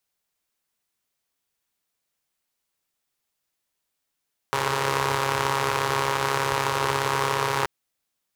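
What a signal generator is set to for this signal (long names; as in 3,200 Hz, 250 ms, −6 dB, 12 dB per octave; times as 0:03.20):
pulse-train model of a four-cylinder engine, steady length 3.13 s, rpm 4,100, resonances 120/450/940 Hz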